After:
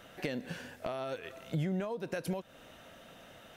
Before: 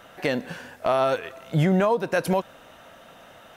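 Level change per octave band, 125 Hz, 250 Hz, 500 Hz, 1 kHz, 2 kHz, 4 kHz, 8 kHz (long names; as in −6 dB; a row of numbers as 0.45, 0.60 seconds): −11.5, −11.5, −14.5, −17.5, −13.0, −10.5, −10.0 decibels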